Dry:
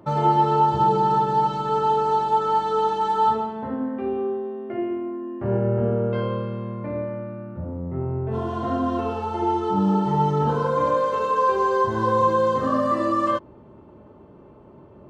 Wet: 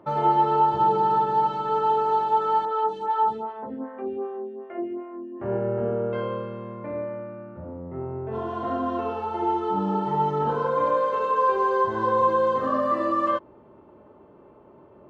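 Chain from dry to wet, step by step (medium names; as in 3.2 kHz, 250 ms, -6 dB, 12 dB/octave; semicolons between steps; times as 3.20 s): tone controls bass -9 dB, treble -11 dB; 2.65–5.40 s: lamp-driven phase shifter 2.6 Hz; trim -1 dB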